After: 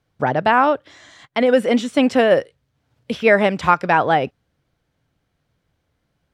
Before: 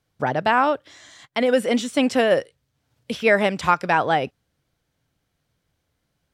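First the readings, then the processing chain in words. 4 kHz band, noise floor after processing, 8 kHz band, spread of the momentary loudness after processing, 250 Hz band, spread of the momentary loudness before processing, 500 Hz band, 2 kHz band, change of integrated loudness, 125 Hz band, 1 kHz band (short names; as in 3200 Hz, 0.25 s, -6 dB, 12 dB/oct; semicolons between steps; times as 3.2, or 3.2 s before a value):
+0.5 dB, -72 dBFS, n/a, 8 LU, +4.0 dB, 9 LU, +4.0 dB, +2.5 dB, +3.5 dB, +4.0 dB, +3.5 dB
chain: high shelf 4400 Hz -10 dB; gain +4 dB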